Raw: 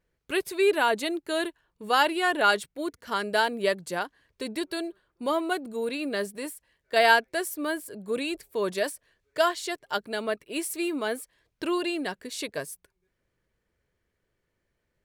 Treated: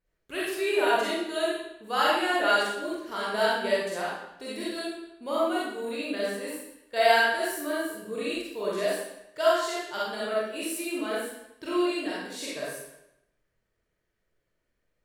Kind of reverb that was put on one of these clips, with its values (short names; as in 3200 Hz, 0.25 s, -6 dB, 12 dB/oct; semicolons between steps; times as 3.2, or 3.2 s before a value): digital reverb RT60 0.82 s, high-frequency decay 0.95×, pre-delay 5 ms, DRR -8 dB; gain -9 dB